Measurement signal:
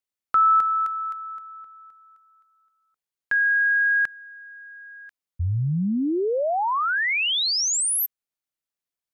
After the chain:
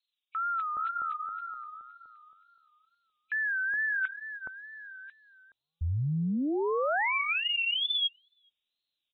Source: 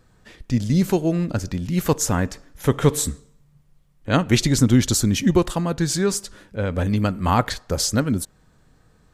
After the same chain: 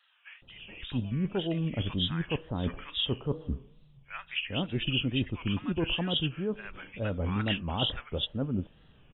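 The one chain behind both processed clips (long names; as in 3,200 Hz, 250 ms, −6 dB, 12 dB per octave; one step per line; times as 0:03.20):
hearing-aid frequency compression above 2,300 Hz 4 to 1
reversed playback
downward compressor 6 to 1, threshold −26 dBFS
reversed playback
tape wow and flutter 120 cents
multiband delay without the direct sound highs, lows 420 ms, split 1,100 Hz
level −1.5 dB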